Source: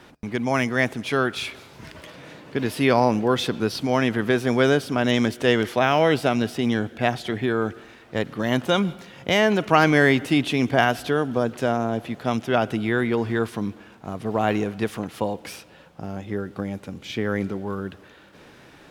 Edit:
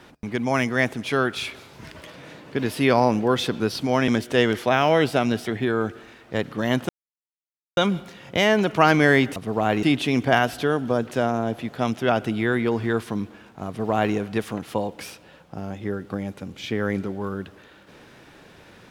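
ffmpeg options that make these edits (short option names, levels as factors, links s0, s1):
-filter_complex "[0:a]asplit=6[s0][s1][s2][s3][s4][s5];[s0]atrim=end=4.082[s6];[s1]atrim=start=5.178:end=6.562[s7];[s2]atrim=start=7.268:end=8.7,asetpts=PTS-STARTPTS,afade=t=out:st=1.428:d=0.004:c=hsin,apad=pad_dur=0.88[s8];[s3]atrim=start=8.7:end=10.292,asetpts=PTS-STARTPTS,afade=t=in:d=0.004:c=hsin[s9];[s4]atrim=start=14.138:end=14.612[s10];[s5]atrim=start=10.288[s11];[s6][s7]acrossfade=d=0.004:c1=hsin:c2=hsin[s12];[s8][s9]concat=n=2:v=0:a=1[s13];[s12][s13]acrossfade=d=0.004:c1=hsin:c2=hsin[s14];[s14][s10]acrossfade=d=0.004:c1=hsin:c2=hsin[s15];[s15][s11]acrossfade=d=0.004:c1=hsin:c2=hsin"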